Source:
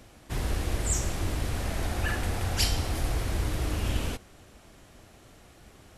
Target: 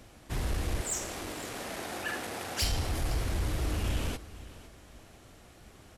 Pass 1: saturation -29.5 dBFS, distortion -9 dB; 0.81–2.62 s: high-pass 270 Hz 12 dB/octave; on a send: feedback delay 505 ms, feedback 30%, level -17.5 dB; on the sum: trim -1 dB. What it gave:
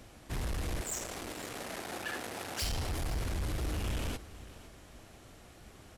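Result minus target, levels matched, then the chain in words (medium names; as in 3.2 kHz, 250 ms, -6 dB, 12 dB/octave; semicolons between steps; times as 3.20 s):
saturation: distortion +8 dB
saturation -21 dBFS, distortion -18 dB; 0.81–2.62 s: high-pass 270 Hz 12 dB/octave; on a send: feedback delay 505 ms, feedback 30%, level -17.5 dB; on the sum: trim -1 dB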